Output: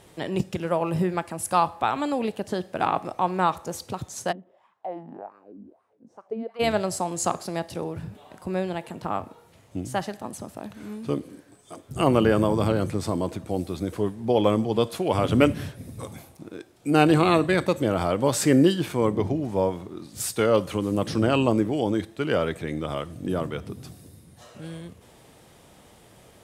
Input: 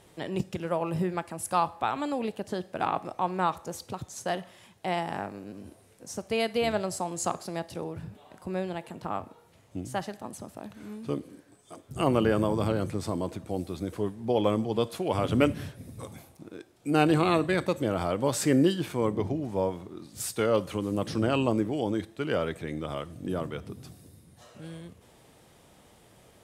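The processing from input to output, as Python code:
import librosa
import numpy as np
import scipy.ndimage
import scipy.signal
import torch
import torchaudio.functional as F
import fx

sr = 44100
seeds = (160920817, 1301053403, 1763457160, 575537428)

y = fx.wah_lfo(x, sr, hz=fx.line((4.31, 1.1), (6.59, 3.4)), low_hz=220.0, high_hz=1200.0, q=4.6, at=(4.31, 6.59), fade=0.02)
y = y * 10.0 ** (4.5 / 20.0)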